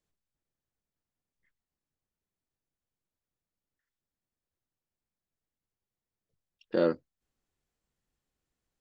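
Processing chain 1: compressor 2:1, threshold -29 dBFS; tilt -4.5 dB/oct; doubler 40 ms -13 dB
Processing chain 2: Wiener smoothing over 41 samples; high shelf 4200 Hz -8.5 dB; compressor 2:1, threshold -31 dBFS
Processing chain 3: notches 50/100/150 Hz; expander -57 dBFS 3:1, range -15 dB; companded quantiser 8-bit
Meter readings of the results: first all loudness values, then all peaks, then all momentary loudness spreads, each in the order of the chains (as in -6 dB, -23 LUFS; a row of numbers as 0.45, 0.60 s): -28.0, -35.0, -30.0 LUFS; -12.0, -18.5, -13.5 dBFS; 8, 9, 9 LU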